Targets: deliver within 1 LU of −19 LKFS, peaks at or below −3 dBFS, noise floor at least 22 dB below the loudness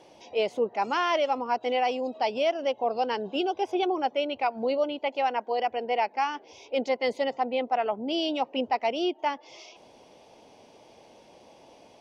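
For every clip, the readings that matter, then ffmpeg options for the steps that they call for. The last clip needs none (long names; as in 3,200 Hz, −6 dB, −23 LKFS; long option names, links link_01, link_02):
integrated loudness −28.0 LKFS; sample peak −15.5 dBFS; target loudness −19.0 LKFS
→ -af "volume=9dB"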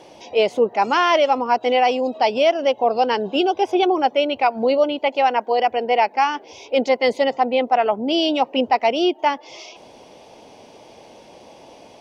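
integrated loudness −19.0 LKFS; sample peak −6.5 dBFS; background noise floor −46 dBFS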